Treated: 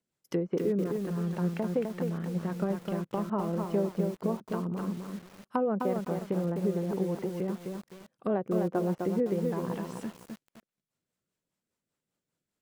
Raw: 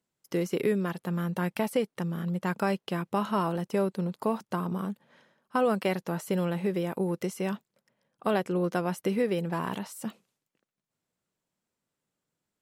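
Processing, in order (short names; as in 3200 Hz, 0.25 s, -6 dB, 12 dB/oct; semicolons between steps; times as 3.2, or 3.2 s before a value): treble ducked by the level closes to 910 Hz, closed at -26.5 dBFS; rotary speaker horn 5 Hz; lo-fi delay 0.256 s, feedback 35%, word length 8-bit, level -4 dB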